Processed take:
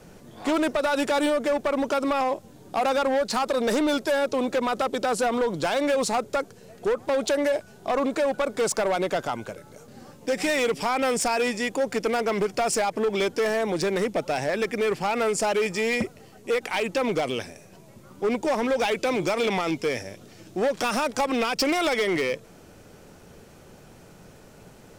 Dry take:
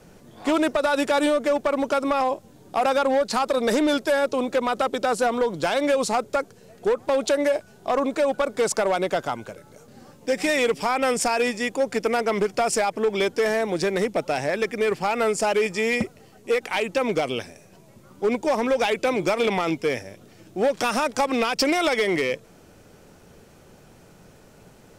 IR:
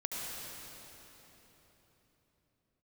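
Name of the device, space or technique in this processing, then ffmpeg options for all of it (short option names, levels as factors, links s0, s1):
limiter into clipper: -filter_complex "[0:a]asettb=1/sr,asplit=3[s0][s1][s2];[s0]atrim=end=18.964[s3];[s1]atrim=start=18.96:end=20.65,asetpts=PTS-STARTPTS,afade=t=in:d=0.004:c=qsin,afade=t=out:st=1.686:d=0.004:c=qsin,equalizer=f=5400:t=o:w=1.5:g=3.5[s4];[s2]atrim=start=20.646[s5];[s3][s4]acrossfade=d=0.004:c1=hsin:c2=qsin[s6];[s6][s5]acrossfade=d=0.004:c1=qsin:c2=hsin,alimiter=limit=0.119:level=0:latency=1:release=29,asoftclip=type=hard:threshold=0.0891,volume=1.19"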